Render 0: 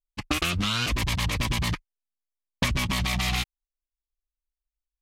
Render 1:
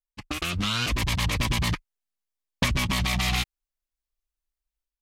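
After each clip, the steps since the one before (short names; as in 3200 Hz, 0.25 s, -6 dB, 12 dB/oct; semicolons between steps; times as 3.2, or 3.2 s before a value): AGC gain up to 9 dB; gain -7 dB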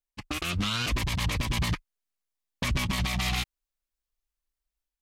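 limiter -19 dBFS, peak gain reduction 8 dB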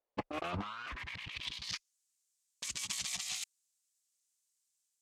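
band-pass sweep 550 Hz -> 7400 Hz, 0.29–1.94; negative-ratio compressor -50 dBFS, ratio -1; gain +9 dB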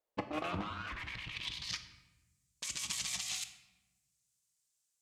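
shoebox room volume 560 m³, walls mixed, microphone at 0.56 m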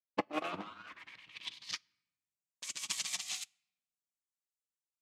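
HPF 230 Hz 12 dB/oct; upward expander 2.5:1, over -52 dBFS; gain +5.5 dB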